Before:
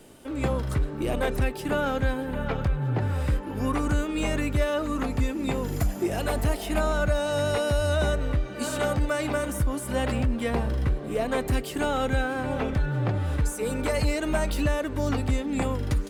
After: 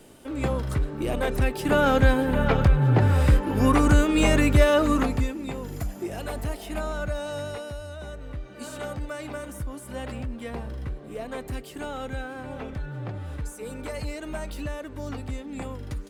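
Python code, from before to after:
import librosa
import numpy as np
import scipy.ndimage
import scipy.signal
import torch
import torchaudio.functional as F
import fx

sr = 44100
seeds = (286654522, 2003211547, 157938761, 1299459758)

y = fx.gain(x, sr, db=fx.line((1.25, 0.0), (1.94, 7.0), (4.92, 7.0), (5.46, -5.5), (7.29, -5.5), (7.96, -15.0), (8.53, -8.0)))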